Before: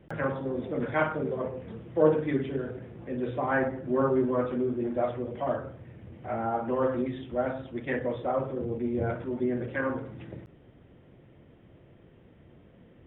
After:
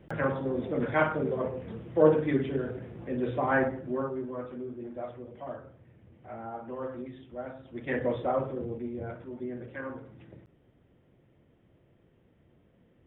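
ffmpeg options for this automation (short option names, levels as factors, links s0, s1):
-af "volume=4.47,afade=t=out:st=3.6:d=0.51:silence=0.281838,afade=t=in:st=7.63:d=0.46:silence=0.251189,afade=t=out:st=8.09:d=0.9:silence=0.298538"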